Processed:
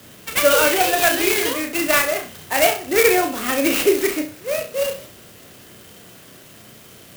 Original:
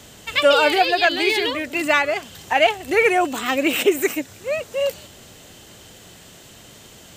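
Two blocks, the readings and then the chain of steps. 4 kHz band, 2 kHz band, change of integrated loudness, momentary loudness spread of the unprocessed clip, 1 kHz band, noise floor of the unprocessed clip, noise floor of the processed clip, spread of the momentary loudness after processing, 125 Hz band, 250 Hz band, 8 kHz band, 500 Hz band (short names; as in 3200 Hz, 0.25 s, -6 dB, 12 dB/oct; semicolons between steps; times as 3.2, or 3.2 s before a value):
-1.5 dB, -0.5 dB, +1.0 dB, 10 LU, -1.5 dB, -45 dBFS, -45 dBFS, 10 LU, +3.5 dB, +1.5 dB, +10.0 dB, +0.5 dB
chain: HPF 94 Hz; bell 850 Hz -9.5 dB 0.25 oct; on a send: flutter echo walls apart 5.6 m, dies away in 0.36 s; on the sum: clock jitter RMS 0.057 ms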